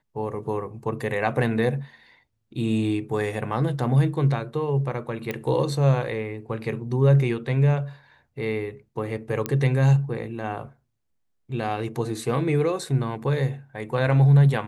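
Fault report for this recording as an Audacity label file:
5.310000	5.310000	click −15 dBFS
9.460000	9.460000	click −10 dBFS

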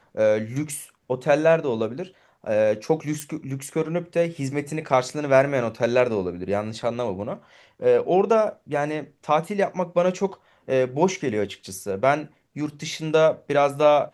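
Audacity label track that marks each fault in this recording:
3.200000	3.200000	click −14 dBFS

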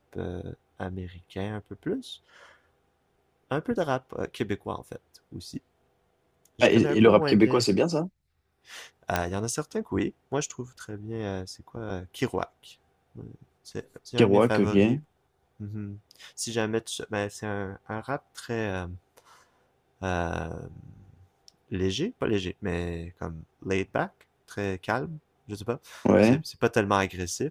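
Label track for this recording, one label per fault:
9.160000	9.160000	click −9 dBFS

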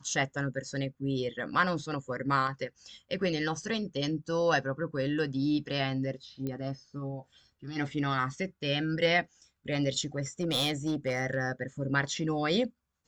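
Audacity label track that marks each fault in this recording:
6.470000	6.470000	click −23 dBFS
10.400000	11.370000	clipping −24 dBFS

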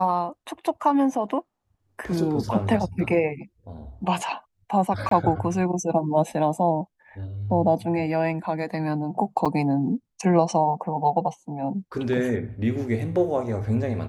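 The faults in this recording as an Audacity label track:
5.090000	5.110000	drop-out 23 ms
9.450000	9.460000	drop-out 6.4 ms

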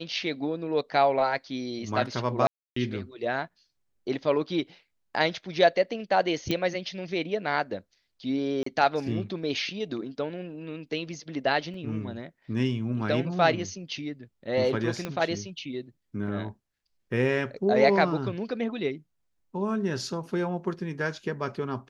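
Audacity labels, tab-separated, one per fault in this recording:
2.470000	2.760000	drop-out 294 ms
6.510000	6.510000	click −14 dBFS
8.630000	8.660000	drop-out 34 ms
11.740000	11.740000	drop-out 2.8 ms
15.050000	15.050000	click −17 dBFS

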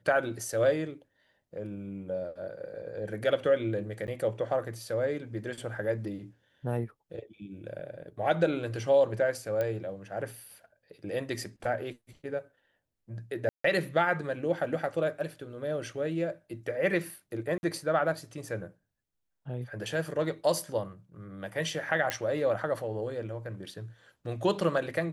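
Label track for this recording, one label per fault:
4.070000	4.080000	drop-out 9.5 ms
9.610000	9.610000	click −19 dBFS
13.490000	13.640000	drop-out 154 ms
17.580000	17.630000	drop-out 51 ms
22.100000	22.100000	click −13 dBFS

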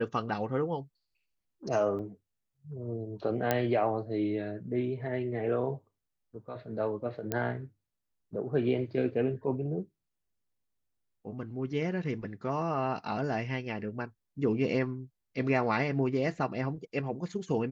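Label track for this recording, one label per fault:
1.990000	1.990000	drop-out 2 ms
3.510000	3.510000	click −12 dBFS
7.320000	7.320000	click −16 dBFS

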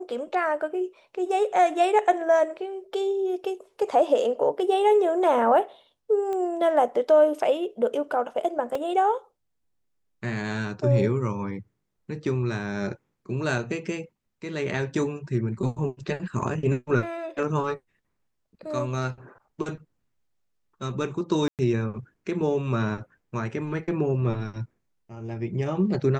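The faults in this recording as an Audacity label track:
6.330000	6.330000	click −21 dBFS
8.750000	8.750000	drop-out 3 ms
21.480000	21.590000	drop-out 108 ms

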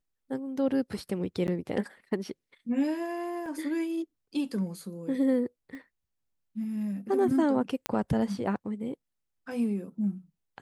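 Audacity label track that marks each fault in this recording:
1.470000	1.480000	drop-out 9.9 ms
3.460000	3.460000	drop-out 2.1 ms
5.750000	5.750000	click −32 dBFS
7.860000	7.860000	click −13 dBFS

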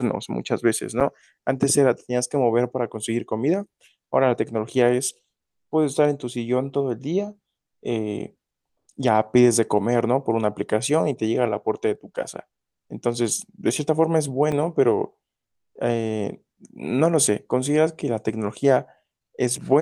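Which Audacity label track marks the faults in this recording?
1.000000	1.010000	drop-out 7.4 ms
14.520000	14.520000	drop-out 3.8 ms

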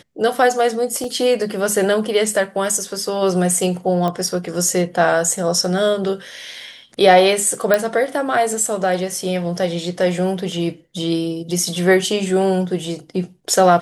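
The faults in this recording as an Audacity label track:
1.040000	1.040000	drop-out 2.2 ms
4.080000	4.080000	click −11 dBFS
7.740000	7.740000	click −2 dBFS

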